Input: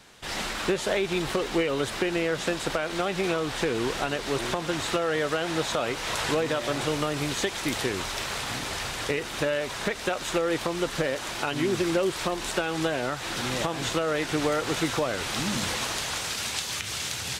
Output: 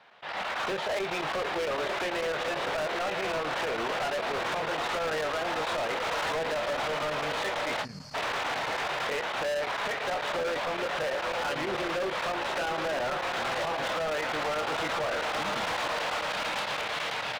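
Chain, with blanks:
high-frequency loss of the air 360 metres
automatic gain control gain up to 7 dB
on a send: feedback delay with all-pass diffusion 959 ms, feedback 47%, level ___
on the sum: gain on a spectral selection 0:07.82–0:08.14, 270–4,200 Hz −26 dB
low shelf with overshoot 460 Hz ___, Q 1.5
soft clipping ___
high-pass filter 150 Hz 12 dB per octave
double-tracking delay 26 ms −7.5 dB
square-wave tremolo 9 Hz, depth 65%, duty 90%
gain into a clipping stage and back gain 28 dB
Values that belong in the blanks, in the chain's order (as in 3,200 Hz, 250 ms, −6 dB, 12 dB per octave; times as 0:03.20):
−9 dB, −10.5 dB, −18 dBFS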